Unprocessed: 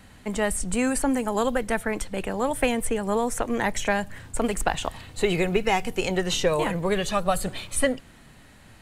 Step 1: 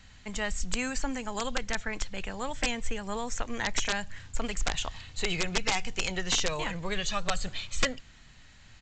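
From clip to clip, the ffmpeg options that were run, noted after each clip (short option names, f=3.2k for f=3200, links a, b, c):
-af "equalizer=f=390:w=0.3:g=-14.5,aresample=16000,aeval=exprs='(mod(9.44*val(0)+1,2)-1)/9.44':c=same,aresample=44100,volume=2dB"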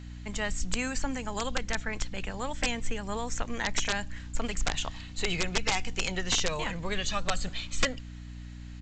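-af "aeval=exprs='val(0)+0.00891*(sin(2*PI*60*n/s)+sin(2*PI*2*60*n/s)/2+sin(2*PI*3*60*n/s)/3+sin(2*PI*4*60*n/s)/4+sin(2*PI*5*60*n/s)/5)':c=same"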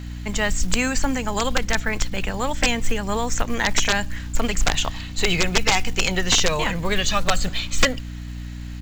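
-filter_complex "[0:a]asplit=2[a][b];[b]asoftclip=type=tanh:threshold=-22dB,volume=-9.5dB[c];[a][c]amix=inputs=2:normalize=0,acrusher=bits=7:mode=log:mix=0:aa=0.000001,volume=7.5dB"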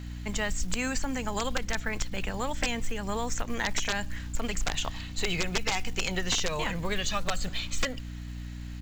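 -af "acompressor=threshold=-19dB:ratio=3,volume=-6dB"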